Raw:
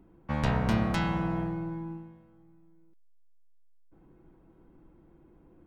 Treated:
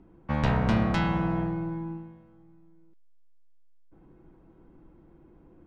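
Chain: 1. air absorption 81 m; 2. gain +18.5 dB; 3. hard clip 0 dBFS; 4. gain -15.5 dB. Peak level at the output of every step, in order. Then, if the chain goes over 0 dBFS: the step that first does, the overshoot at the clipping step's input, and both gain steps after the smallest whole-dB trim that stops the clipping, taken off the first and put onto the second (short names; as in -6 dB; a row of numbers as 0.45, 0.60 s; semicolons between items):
-13.0, +5.5, 0.0, -15.5 dBFS; step 2, 5.5 dB; step 2 +12.5 dB, step 4 -9.5 dB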